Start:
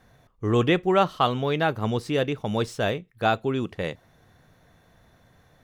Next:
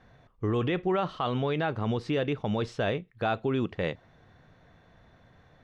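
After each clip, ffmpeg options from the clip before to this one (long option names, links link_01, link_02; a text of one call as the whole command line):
ffmpeg -i in.wav -af "lowpass=3900,alimiter=limit=-18.5dB:level=0:latency=1:release=44" out.wav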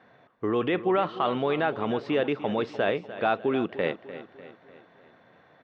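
ffmpeg -i in.wav -af "highpass=250,lowpass=3300,aecho=1:1:298|596|894|1192|1490:0.2|0.0958|0.046|0.0221|0.0106,volume=4dB" out.wav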